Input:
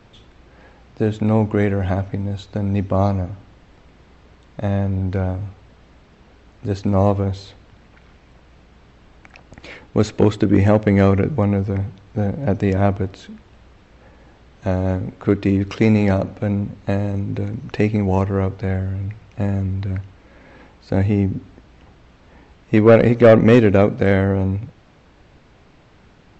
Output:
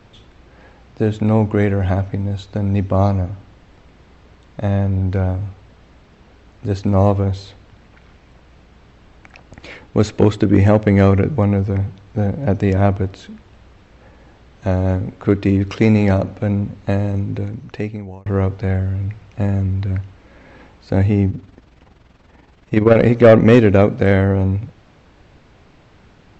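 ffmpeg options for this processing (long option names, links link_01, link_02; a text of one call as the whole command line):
ffmpeg -i in.wav -filter_complex "[0:a]asettb=1/sr,asplit=3[link_01][link_02][link_03];[link_01]atrim=end=21.304[link_04];[link_02]atrim=start=21.3:end=22.98,asetpts=PTS-STARTPTS,afade=type=in:duration=0.004:curve=qsin,afade=type=out:start_time=1.676:duration=0.004:curve=qsin,tremolo=f=21:d=0.621[link_05];[link_03]atrim=start=22.976[link_06];[link_04][link_05]acrossfade=duration=0.004:curve1=hsin:curve2=qsin[link_07];[link_07][link_06]acrossfade=duration=0.004:curve1=qsin:curve2=hsin,asplit=2[link_08][link_09];[link_08]atrim=end=18.26,asetpts=PTS-STARTPTS,afade=type=out:start_time=17.2:duration=1.06[link_10];[link_09]atrim=start=18.26,asetpts=PTS-STARTPTS,afade=type=in:duration=0.004:curve=hsin[link_11];[link_10][link_11]concat=n=2:v=0:a=1,equalizer=frequency=92:width_type=o:width=0.39:gain=2.5,volume=1.5dB" out.wav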